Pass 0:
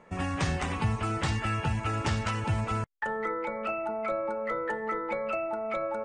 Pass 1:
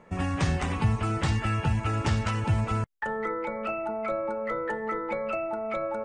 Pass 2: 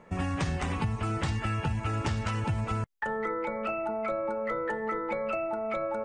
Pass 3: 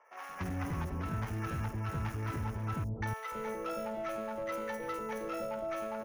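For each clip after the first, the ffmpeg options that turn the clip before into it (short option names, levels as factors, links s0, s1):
-af "lowshelf=f=330:g=4.5"
-af "acompressor=threshold=0.0501:ratio=6"
-filter_complex "[0:a]acrossover=split=100|1800[s0][s1][s2];[s2]acrusher=samples=11:mix=1:aa=0.000001[s3];[s0][s1][s3]amix=inputs=3:normalize=0,asoftclip=type=hard:threshold=0.0376,acrossover=split=620|5600[s4][s5][s6];[s6]adelay=50[s7];[s4]adelay=290[s8];[s8][s5][s7]amix=inputs=3:normalize=0,volume=0.668"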